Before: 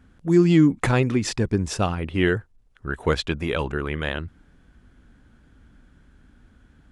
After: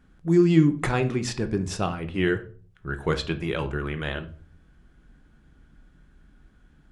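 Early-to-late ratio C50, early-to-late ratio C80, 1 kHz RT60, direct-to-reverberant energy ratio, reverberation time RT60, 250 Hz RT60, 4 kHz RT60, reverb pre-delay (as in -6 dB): 14.5 dB, 19.5 dB, 0.40 s, 7.0 dB, 0.40 s, 0.50 s, 0.30 s, 3 ms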